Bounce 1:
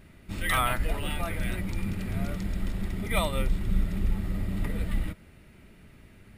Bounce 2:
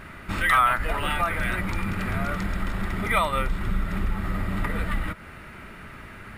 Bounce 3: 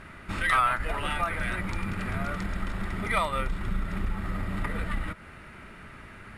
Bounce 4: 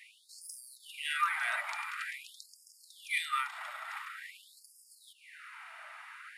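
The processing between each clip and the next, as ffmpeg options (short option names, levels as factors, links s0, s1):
-af "equalizer=f=1300:w=0.86:g=15,acompressor=threshold=0.0178:ratio=2,volume=2.37"
-af "lowpass=f=12000:w=0.5412,lowpass=f=12000:w=1.3066,aeval=exprs='0.422*(cos(1*acos(clip(val(0)/0.422,-1,1)))-cos(1*PI/2))+0.0841*(cos(2*acos(clip(val(0)/0.422,-1,1)))-cos(2*PI/2))':c=same,volume=0.631"
-af "afftfilt=real='re*gte(b*sr/1024,590*pow(4800/590,0.5+0.5*sin(2*PI*0.47*pts/sr)))':imag='im*gte(b*sr/1024,590*pow(4800/590,0.5+0.5*sin(2*PI*0.47*pts/sr)))':win_size=1024:overlap=0.75"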